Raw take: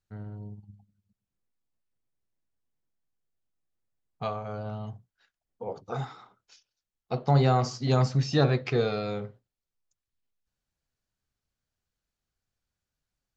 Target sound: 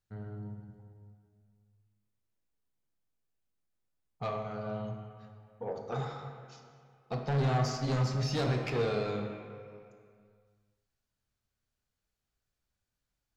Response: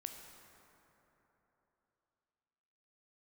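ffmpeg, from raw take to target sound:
-filter_complex "[0:a]asoftclip=type=tanh:threshold=0.0501[s0];[1:a]atrim=start_sample=2205,asetrate=70560,aresample=44100[s1];[s0][s1]afir=irnorm=-1:irlink=0,volume=2.24"

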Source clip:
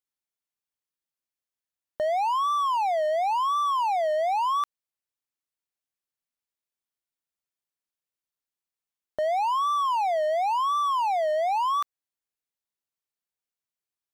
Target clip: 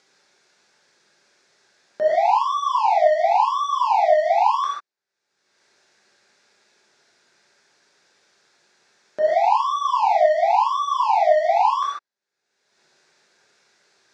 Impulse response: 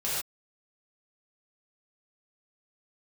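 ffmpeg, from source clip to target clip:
-filter_complex "[1:a]atrim=start_sample=2205[s0];[0:a][s0]afir=irnorm=-1:irlink=0,acompressor=mode=upward:threshold=0.0224:ratio=2.5,highpass=200,equalizer=f=380:t=q:w=4:g=5,equalizer=f=1100:t=q:w=4:g=-4,equalizer=f=1600:t=q:w=4:g=6,equalizer=f=3000:t=q:w=4:g=-9,lowpass=f=6000:w=0.5412,lowpass=f=6000:w=1.3066"

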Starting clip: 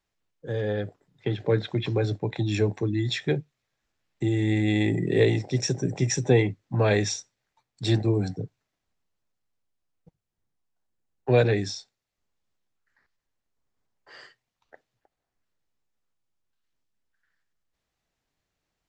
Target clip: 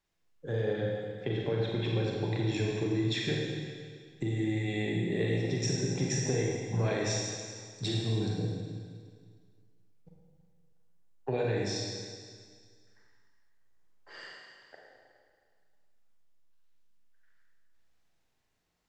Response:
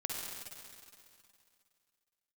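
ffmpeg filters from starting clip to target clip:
-filter_complex "[0:a]acompressor=threshold=0.0398:ratio=6[s0];[1:a]atrim=start_sample=2205,asetrate=57330,aresample=44100[s1];[s0][s1]afir=irnorm=-1:irlink=0,volume=1.26"

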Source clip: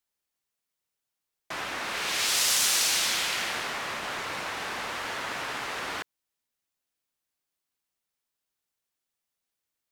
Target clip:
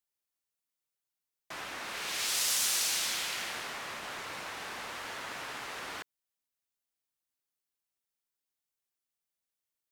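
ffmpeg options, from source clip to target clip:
-af "highshelf=f=6700:g=4.5,volume=0.422"

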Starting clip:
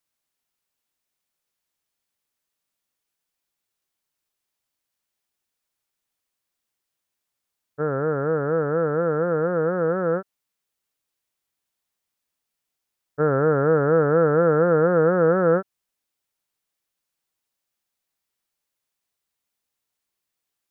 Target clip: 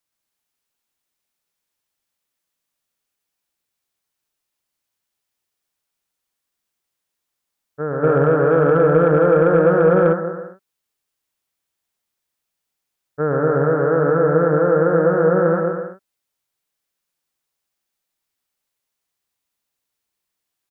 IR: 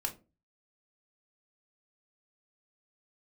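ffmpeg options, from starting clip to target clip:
-filter_complex "[0:a]aecho=1:1:120|210|277.5|328.1|366.1:0.631|0.398|0.251|0.158|0.1,asplit=3[s0][s1][s2];[s0]afade=t=out:st=8.02:d=0.02[s3];[s1]acontrast=72,afade=t=in:st=8.02:d=0.02,afade=t=out:st=10.12:d=0.02[s4];[s2]afade=t=in:st=10.12:d=0.02[s5];[s3][s4][s5]amix=inputs=3:normalize=0"

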